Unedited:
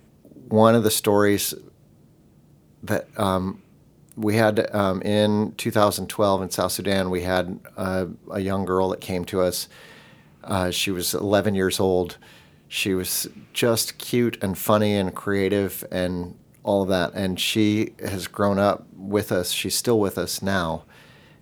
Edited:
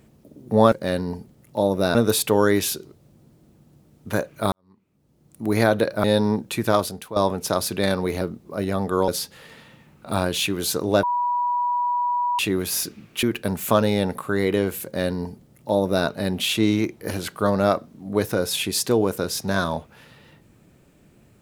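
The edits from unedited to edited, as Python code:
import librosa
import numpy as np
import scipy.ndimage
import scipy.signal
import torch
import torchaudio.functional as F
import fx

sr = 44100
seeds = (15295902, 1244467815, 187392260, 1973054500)

y = fx.edit(x, sr, fx.fade_in_span(start_s=3.29, length_s=0.94, curve='qua'),
    fx.cut(start_s=4.81, length_s=0.31),
    fx.fade_out_to(start_s=5.72, length_s=0.52, floor_db=-13.0),
    fx.cut(start_s=7.29, length_s=0.7),
    fx.cut(start_s=8.86, length_s=0.61),
    fx.bleep(start_s=11.42, length_s=1.36, hz=973.0, db=-19.5),
    fx.cut(start_s=13.62, length_s=0.59),
    fx.duplicate(start_s=15.82, length_s=1.23, to_s=0.72), tone=tone)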